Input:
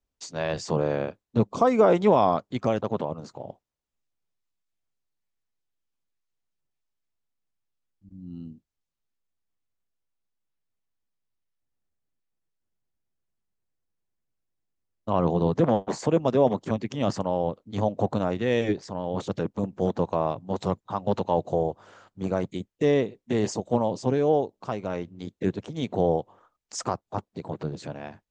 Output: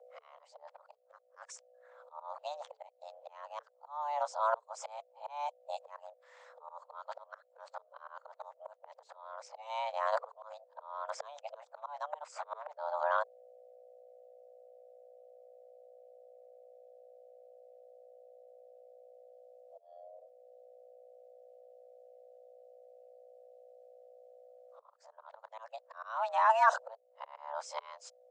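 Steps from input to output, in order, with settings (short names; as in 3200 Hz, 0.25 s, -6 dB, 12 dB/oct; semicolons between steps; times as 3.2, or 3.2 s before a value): whole clip reversed; hum 60 Hz, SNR 26 dB; auto swell 0.758 s; frequency shift +440 Hz; gain -3 dB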